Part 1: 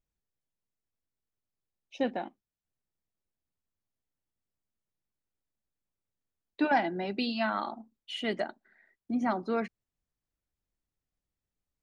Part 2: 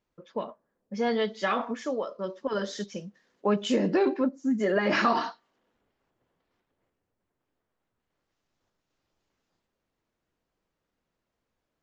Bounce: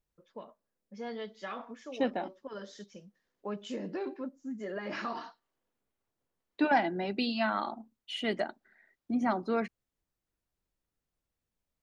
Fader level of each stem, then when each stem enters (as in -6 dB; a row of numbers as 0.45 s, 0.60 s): 0.0 dB, -13.0 dB; 0.00 s, 0.00 s